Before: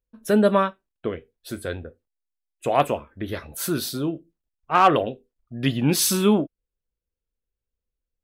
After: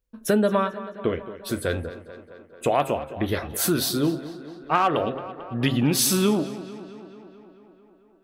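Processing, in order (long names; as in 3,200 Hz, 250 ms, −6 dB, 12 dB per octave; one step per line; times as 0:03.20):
hum removal 133.6 Hz, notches 14
downward compressor 5 to 1, threshold −23 dBFS, peak gain reduction 11.5 dB
tape delay 220 ms, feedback 75%, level −13.5 dB, low-pass 3,800 Hz
level +5 dB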